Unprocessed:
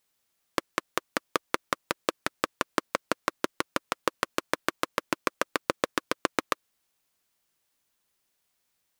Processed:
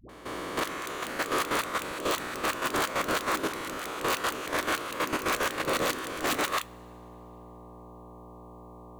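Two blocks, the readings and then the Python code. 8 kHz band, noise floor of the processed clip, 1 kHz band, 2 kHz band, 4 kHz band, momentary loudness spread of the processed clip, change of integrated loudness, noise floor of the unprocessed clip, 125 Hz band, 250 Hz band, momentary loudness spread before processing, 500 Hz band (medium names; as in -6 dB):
+4.0 dB, -48 dBFS, +2.0 dB, +2.0 dB, +3.0 dB, 20 LU, +2.0 dB, -77 dBFS, +4.5 dB, +1.0 dB, 3 LU, +1.5 dB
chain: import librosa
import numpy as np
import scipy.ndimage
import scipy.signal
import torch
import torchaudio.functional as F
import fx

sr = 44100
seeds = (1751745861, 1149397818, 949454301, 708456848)

y = fx.spec_swells(x, sr, rise_s=1.52)
y = fx.dmg_buzz(y, sr, base_hz=60.0, harmonics=20, level_db=-46.0, tilt_db=-2, odd_only=False)
y = (np.mod(10.0 ** (13.5 / 20.0) * y + 1.0, 2.0) - 1.0) / 10.0 ** (13.5 / 20.0)
y = fx.peak_eq(y, sr, hz=5200.0, db=-6.0, octaves=0.26)
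y = fx.dispersion(y, sr, late='highs', ms=93.0, hz=410.0)
y = fx.level_steps(y, sr, step_db=12)
y = 10.0 ** (-21.0 / 20.0) * np.tanh(y / 10.0 ** (-21.0 / 20.0))
y = fx.rev_double_slope(y, sr, seeds[0], early_s=0.2, late_s=2.8, knee_db=-21, drr_db=14.5)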